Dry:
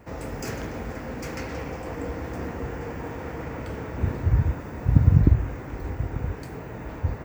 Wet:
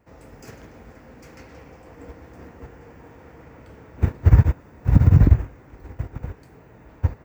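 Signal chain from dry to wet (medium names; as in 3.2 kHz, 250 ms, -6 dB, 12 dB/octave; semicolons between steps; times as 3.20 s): loudness maximiser +11 dB; upward expansion 2.5:1, over -21 dBFS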